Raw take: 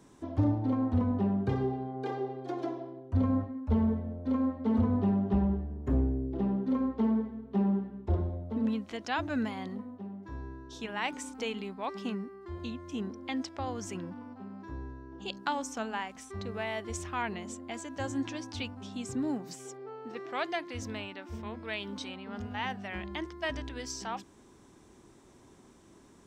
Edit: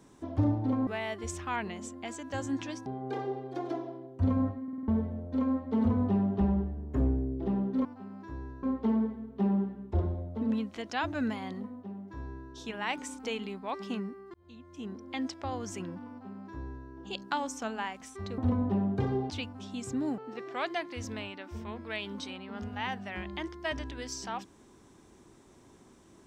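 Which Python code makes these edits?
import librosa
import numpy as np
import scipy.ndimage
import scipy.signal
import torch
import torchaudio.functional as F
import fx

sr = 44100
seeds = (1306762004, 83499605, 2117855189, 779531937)

y = fx.edit(x, sr, fx.swap(start_s=0.87, length_s=0.92, other_s=16.53, other_length_s=1.99),
    fx.stutter_over(start_s=3.56, slice_s=0.05, count=5),
    fx.fade_in_span(start_s=12.49, length_s=0.87),
    fx.duplicate(start_s=14.25, length_s=0.78, to_s=6.78),
    fx.cut(start_s=19.4, length_s=0.56), tone=tone)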